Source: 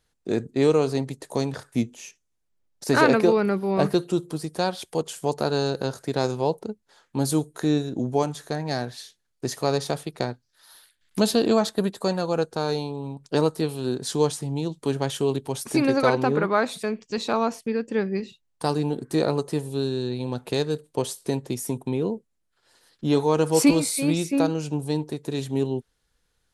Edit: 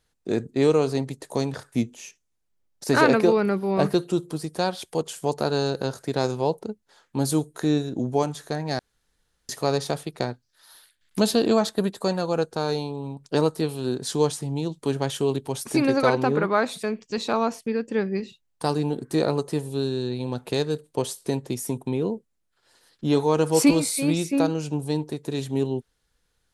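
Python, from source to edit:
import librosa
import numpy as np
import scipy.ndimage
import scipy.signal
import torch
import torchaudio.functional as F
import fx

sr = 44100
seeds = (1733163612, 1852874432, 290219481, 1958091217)

y = fx.edit(x, sr, fx.room_tone_fill(start_s=8.79, length_s=0.7), tone=tone)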